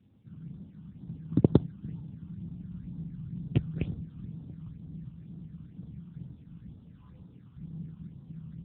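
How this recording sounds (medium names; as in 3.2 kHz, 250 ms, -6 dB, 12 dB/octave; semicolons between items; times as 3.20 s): a buzz of ramps at a fixed pitch in blocks of 8 samples; phasing stages 8, 2.1 Hz, lowest notch 560–2300 Hz; AMR-NB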